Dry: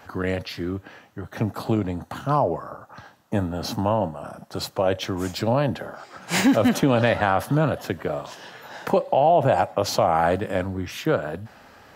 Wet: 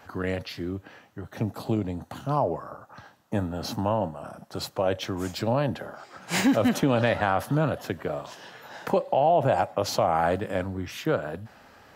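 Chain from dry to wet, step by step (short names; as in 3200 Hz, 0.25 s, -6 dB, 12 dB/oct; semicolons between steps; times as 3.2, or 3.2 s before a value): 0.51–2.37 dynamic EQ 1400 Hz, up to -6 dB, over -44 dBFS, Q 1.2; gain -3.5 dB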